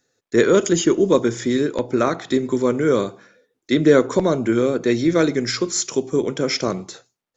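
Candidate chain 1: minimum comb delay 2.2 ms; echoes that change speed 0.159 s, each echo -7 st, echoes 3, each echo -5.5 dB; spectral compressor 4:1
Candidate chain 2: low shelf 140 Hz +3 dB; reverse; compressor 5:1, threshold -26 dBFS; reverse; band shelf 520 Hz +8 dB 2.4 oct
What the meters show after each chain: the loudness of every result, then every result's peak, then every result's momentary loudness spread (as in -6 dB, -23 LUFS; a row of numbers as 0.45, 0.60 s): -21.5, -23.0 LUFS; -2.0, -8.0 dBFS; 5, 5 LU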